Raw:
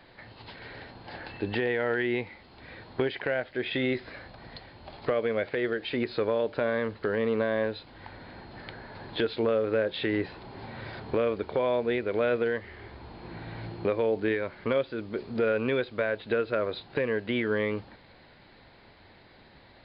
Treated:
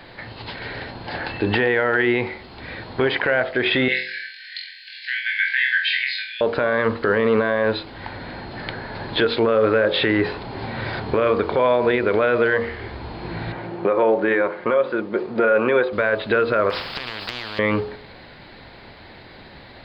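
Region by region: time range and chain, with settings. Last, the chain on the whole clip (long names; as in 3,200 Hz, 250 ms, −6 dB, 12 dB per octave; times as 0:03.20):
0:03.88–0:06.41: linear-phase brick-wall high-pass 1,500 Hz + flutter between parallel walls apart 3.9 metres, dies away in 0.47 s
0:13.52–0:15.93: resonant band-pass 720 Hz, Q 0.54 + comb filter 5.6 ms, depth 35%
0:16.70–0:17.59: downward compressor 12 to 1, threshold −30 dBFS + every bin compressed towards the loudest bin 10 to 1
whole clip: hum removal 46.74 Hz, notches 28; dynamic equaliser 1,200 Hz, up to +7 dB, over −44 dBFS, Q 1.1; boost into a limiter +20.5 dB; level −8 dB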